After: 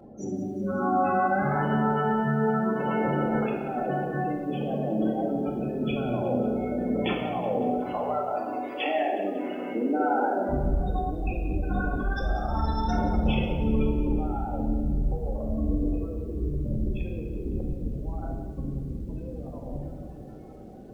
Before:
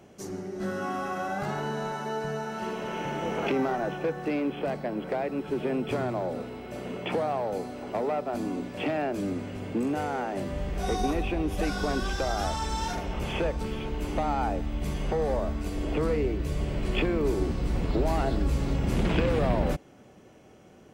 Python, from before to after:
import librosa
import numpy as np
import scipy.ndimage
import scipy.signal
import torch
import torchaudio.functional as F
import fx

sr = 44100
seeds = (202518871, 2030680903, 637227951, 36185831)

y = fx.highpass(x, sr, hz=fx.line((7.81, 860.0), (10.48, 310.0)), slope=12, at=(7.81, 10.48), fade=0.02)
y = fx.spec_gate(y, sr, threshold_db=-15, keep='strong')
y = fx.over_compress(y, sr, threshold_db=-32.0, ratio=-0.5)
y = fx.room_shoebox(y, sr, seeds[0], volume_m3=1000.0, walls='mixed', distance_m=2.1)
y = fx.echo_crushed(y, sr, ms=183, feedback_pct=55, bits=9, wet_db=-14.5)